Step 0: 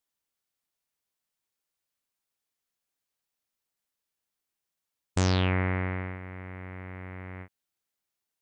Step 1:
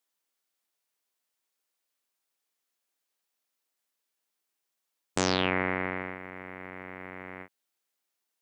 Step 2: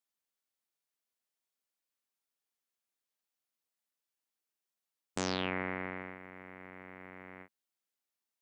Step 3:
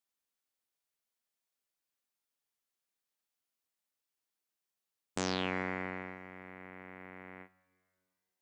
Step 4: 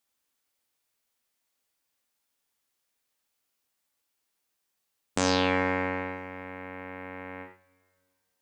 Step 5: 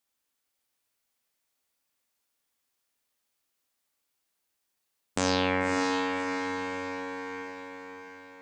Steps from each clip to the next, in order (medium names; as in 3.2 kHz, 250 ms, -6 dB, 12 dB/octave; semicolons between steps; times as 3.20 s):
high-pass 260 Hz 12 dB/octave; trim +3 dB
peaking EQ 220 Hz +5 dB 0.32 oct; trim -8 dB
plate-style reverb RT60 2 s, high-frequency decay 0.95×, DRR 17.5 dB
gated-style reverb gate 120 ms flat, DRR 4.5 dB; trim +8 dB
echo that smears into a reverb 591 ms, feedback 47%, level -5 dB; trim -1.5 dB